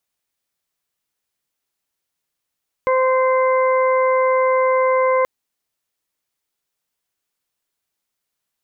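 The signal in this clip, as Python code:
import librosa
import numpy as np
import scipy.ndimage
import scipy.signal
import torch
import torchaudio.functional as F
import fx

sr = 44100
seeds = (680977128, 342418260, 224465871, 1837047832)

y = fx.additive_steady(sr, length_s=2.38, hz=518.0, level_db=-15.0, upper_db=(-3.5, -18.0, -11))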